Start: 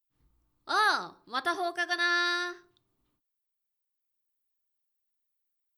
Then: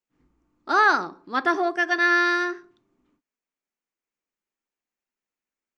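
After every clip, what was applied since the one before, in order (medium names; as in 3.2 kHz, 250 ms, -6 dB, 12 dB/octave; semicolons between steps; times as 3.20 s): FFT filter 120 Hz 0 dB, 240 Hz +14 dB, 680 Hz +7 dB, 2.4 kHz +8 dB, 3.8 kHz -3 dB, 6.9 kHz +3 dB, 11 kHz -18 dB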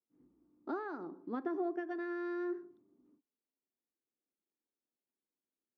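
compression 6:1, threshold -29 dBFS, peak gain reduction 14.5 dB; band-pass filter 300 Hz, Q 1.5; trim +1.5 dB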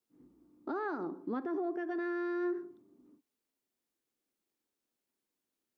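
peak limiter -35 dBFS, peak gain reduction 9.5 dB; trim +6.5 dB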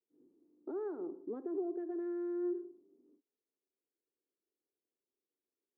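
band-pass filter 410 Hz, Q 3; trim +1 dB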